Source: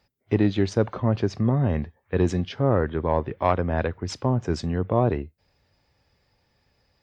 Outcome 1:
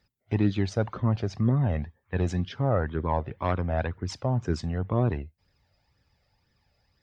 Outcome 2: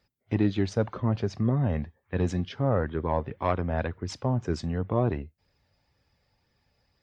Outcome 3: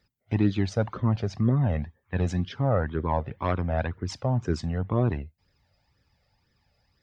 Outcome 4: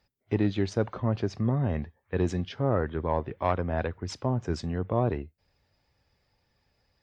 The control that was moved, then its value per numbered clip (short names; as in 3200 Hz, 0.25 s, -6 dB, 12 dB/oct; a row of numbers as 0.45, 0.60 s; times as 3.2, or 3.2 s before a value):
flange, regen: +24, -57, +2, +83%